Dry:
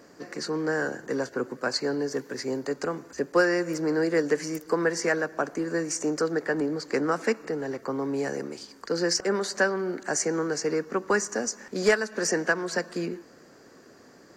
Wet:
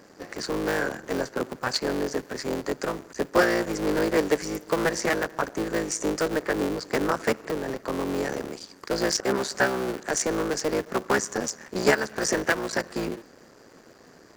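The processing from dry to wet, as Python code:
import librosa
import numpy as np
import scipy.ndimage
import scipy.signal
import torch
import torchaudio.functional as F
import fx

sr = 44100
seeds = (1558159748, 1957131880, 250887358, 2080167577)

y = fx.cycle_switch(x, sr, every=3, mode='muted')
y = F.gain(torch.from_numpy(y), 2.5).numpy()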